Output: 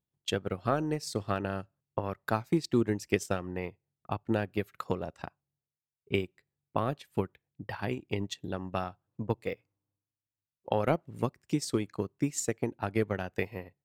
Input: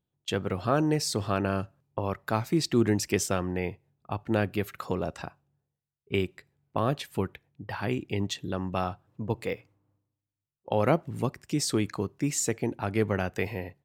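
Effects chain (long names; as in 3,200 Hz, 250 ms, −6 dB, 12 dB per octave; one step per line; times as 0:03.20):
transient designer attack +7 dB, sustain −9 dB
level −6.5 dB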